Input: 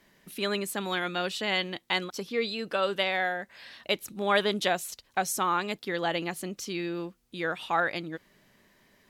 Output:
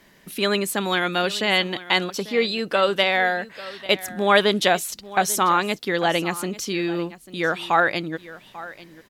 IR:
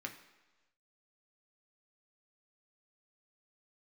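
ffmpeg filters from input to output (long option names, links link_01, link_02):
-af "aecho=1:1:843:0.133,volume=8dB"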